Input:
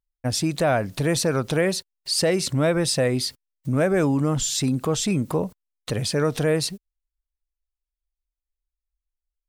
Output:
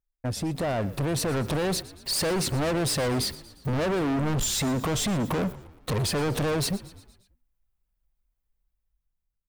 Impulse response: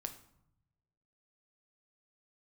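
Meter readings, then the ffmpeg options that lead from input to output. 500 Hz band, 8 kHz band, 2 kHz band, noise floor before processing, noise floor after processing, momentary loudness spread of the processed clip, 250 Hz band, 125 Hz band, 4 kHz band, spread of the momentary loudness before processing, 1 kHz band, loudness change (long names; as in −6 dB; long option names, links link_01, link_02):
−5.5 dB, −3.0 dB, −4.0 dB, below −85 dBFS, −80 dBFS, 6 LU, −4.0 dB, −3.0 dB, −3.0 dB, 9 LU, −1.5 dB, −4.0 dB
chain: -filter_complex "[0:a]equalizer=frequency=5700:width=0.42:gain=-11.5,alimiter=limit=-18.5dB:level=0:latency=1:release=77,dynaudnorm=framelen=350:gausssize=7:maxgain=11dB,asoftclip=type=hard:threshold=-24.5dB,asplit=2[link_01][link_02];[link_02]asplit=5[link_03][link_04][link_05][link_06][link_07];[link_03]adelay=117,afreqshift=-50,volume=-18dB[link_08];[link_04]adelay=234,afreqshift=-100,volume=-23dB[link_09];[link_05]adelay=351,afreqshift=-150,volume=-28.1dB[link_10];[link_06]adelay=468,afreqshift=-200,volume=-33.1dB[link_11];[link_07]adelay=585,afreqshift=-250,volume=-38.1dB[link_12];[link_08][link_09][link_10][link_11][link_12]amix=inputs=5:normalize=0[link_13];[link_01][link_13]amix=inputs=2:normalize=0"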